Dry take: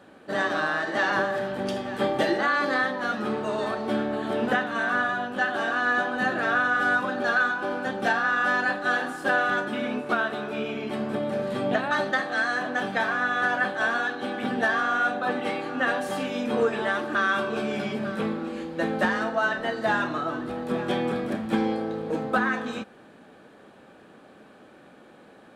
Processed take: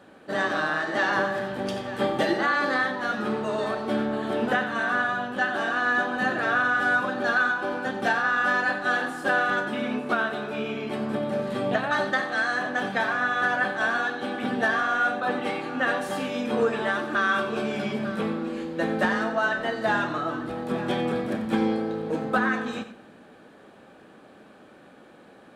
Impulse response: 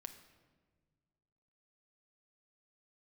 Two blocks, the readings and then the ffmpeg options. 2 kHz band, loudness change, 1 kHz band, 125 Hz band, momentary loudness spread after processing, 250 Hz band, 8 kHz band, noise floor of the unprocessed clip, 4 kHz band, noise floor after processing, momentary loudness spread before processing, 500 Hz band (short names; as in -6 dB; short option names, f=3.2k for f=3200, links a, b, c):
+0.5 dB, +0.5 dB, 0.0 dB, +1.0 dB, 7 LU, +0.5 dB, +0.5 dB, -51 dBFS, 0.0 dB, -51 dBFS, 7 LU, 0.0 dB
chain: -filter_complex "[0:a]asplit=2[a][b];[1:a]atrim=start_sample=2205,adelay=91[c];[b][c]afir=irnorm=-1:irlink=0,volume=-6.5dB[d];[a][d]amix=inputs=2:normalize=0"